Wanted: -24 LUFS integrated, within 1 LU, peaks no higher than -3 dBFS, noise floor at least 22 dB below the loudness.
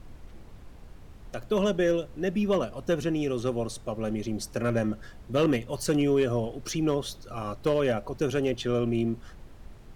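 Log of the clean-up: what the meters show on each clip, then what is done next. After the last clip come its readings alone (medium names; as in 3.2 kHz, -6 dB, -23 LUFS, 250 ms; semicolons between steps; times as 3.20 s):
clipped samples 0.3%; clipping level -16.5 dBFS; noise floor -48 dBFS; noise floor target -50 dBFS; loudness -28.0 LUFS; peak level -16.5 dBFS; loudness target -24.0 LUFS
-> clip repair -16.5 dBFS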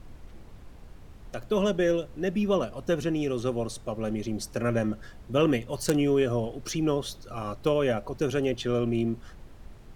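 clipped samples 0.0%; noise floor -48 dBFS; noise floor target -50 dBFS
-> noise print and reduce 6 dB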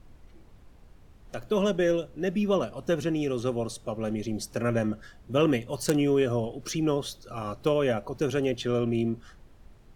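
noise floor -54 dBFS; loudness -28.0 LUFS; peak level -7.5 dBFS; loudness target -24.0 LUFS
-> trim +4 dB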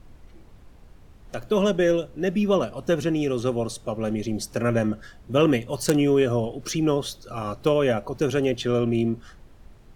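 loudness -24.0 LUFS; peak level -3.5 dBFS; noise floor -50 dBFS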